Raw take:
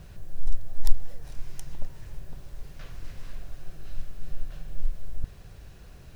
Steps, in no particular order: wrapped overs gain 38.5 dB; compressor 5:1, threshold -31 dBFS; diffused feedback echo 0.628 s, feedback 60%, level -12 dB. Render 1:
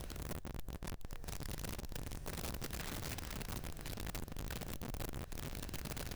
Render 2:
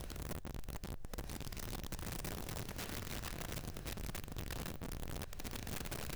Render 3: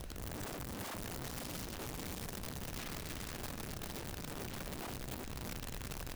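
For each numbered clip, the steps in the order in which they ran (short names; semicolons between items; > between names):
diffused feedback echo > compressor > wrapped overs; compressor > diffused feedback echo > wrapped overs; diffused feedback echo > wrapped overs > compressor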